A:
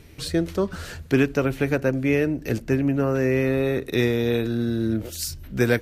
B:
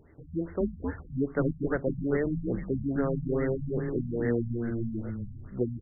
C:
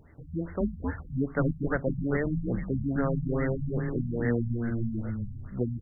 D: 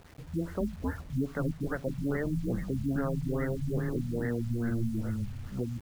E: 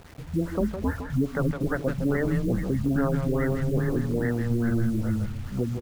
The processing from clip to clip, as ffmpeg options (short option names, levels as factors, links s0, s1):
-filter_complex "[0:a]lowshelf=f=220:g=-6.5,asplit=5[s0][s1][s2][s3][s4];[s1]adelay=261,afreqshift=-120,volume=0.631[s5];[s2]adelay=522,afreqshift=-240,volume=0.214[s6];[s3]adelay=783,afreqshift=-360,volume=0.0733[s7];[s4]adelay=1044,afreqshift=-480,volume=0.0248[s8];[s0][s5][s6][s7][s8]amix=inputs=5:normalize=0,afftfilt=real='re*lt(b*sr/1024,220*pow(2200/220,0.5+0.5*sin(2*PI*2.4*pts/sr)))':imag='im*lt(b*sr/1024,220*pow(2200/220,0.5+0.5*sin(2*PI*2.4*pts/sr)))':win_size=1024:overlap=0.75,volume=0.562"
-af "equalizer=f=380:t=o:w=0.86:g=-7.5,volume=1.5"
-af "alimiter=limit=0.0841:level=0:latency=1:release=251,acrusher=bits=8:mix=0:aa=0.000001"
-filter_complex "[0:a]asplit=2[s0][s1];[s1]adelay=160,highpass=300,lowpass=3400,asoftclip=type=hard:threshold=0.0316,volume=0.501[s2];[s0][s2]amix=inputs=2:normalize=0,volume=2"